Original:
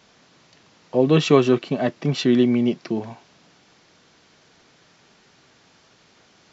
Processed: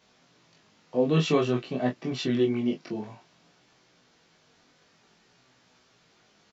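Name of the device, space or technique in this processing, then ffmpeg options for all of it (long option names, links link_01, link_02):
double-tracked vocal: -filter_complex "[0:a]asplit=2[link_01][link_02];[link_02]adelay=24,volume=-5.5dB[link_03];[link_01][link_03]amix=inputs=2:normalize=0,flanger=delay=16:depth=4:speed=0.53,volume=-5dB"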